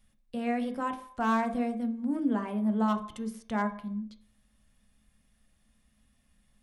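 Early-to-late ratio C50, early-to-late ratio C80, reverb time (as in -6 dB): 12.0 dB, 15.5 dB, 0.60 s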